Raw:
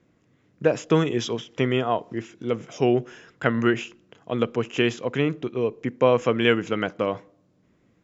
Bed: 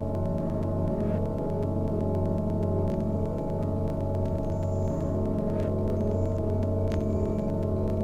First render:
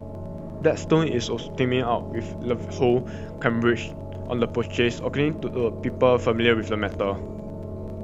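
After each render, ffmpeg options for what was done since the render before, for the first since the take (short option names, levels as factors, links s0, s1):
-filter_complex "[1:a]volume=0.473[s0];[0:a][s0]amix=inputs=2:normalize=0"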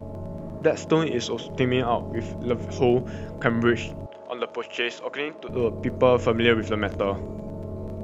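-filter_complex "[0:a]asettb=1/sr,asplit=3[s0][s1][s2];[s0]atrim=end=0.584[s3];[s1]atrim=start=0.58:end=1.5,asetpts=PTS-STARTPTS,afade=t=in:d=0.004:c=qsin,afade=t=out:st=0.916:d=0.004:c=qsin,highpass=f=190:p=1[s4];[s2]atrim=start=1.496[s5];[s3][s4]acrossfade=d=0.004:c1=hsin:c2=qsin[s6];[s6][s5]acrossfade=d=0.004:c1=qsin:c2=hsin,asettb=1/sr,asplit=3[s7][s8][s9];[s7]atrim=end=4.064[s10];[s8]atrim=start=4.06:end=5.49,asetpts=PTS-STARTPTS,afade=t=in:d=0.004:c=qsin,afade=t=out:st=1.426:d=0.004:c=qsin,highpass=570,lowpass=6000[s11];[s9]atrim=start=5.486[s12];[s10][s11]acrossfade=d=0.004:c1=hsin:c2=qsin[s13];[s13][s12]acrossfade=d=0.004:c1=qsin:c2=hsin"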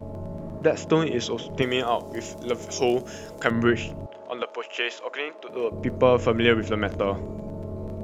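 -filter_complex "[0:a]asettb=1/sr,asplit=3[s0][s1][s2];[s0]atrim=end=1.624[s3];[s1]atrim=start=1.62:end=3.51,asetpts=PTS-STARTPTS,afade=t=in:d=0.004:c=qsin,afade=t=out:st=1.886:d=0.004:c=qsin,bass=f=250:g=-11,treble=f=4000:g=15[s4];[s2]atrim=start=3.506[s5];[s3][s4]acrossfade=d=0.004:c1=hsin:c2=qsin[s6];[s6][s5]acrossfade=d=0.004:c1=qsin:c2=hsin,asettb=1/sr,asplit=3[s7][s8][s9];[s7]atrim=end=4.424[s10];[s8]atrim=start=4.42:end=5.72,asetpts=PTS-STARTPTS,afade=t=in:d=0.004:c=qsin,afade=t=out:st=1.296:d=0.004:c=qsin,highpass=420[s11];[s9]atrim=start=5.716[s12];[s10][s11]acrossfade=d=0.004:c1=hsin:c2=qsin[s13];[s13][s12]acrossfade=d=0.004:c1=qsin:c2=hsin"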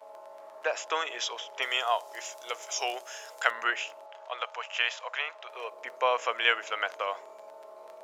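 -af "highpass=f=720:w=0.5412,highpass=f=720:w=1.3066"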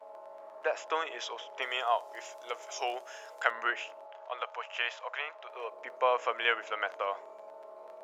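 -af "highshelf=f=2800:g=-11.5"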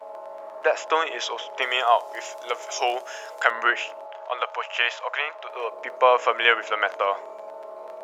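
-af "volume=3.16,alimiter=limit=0.794:level=0:latency=1"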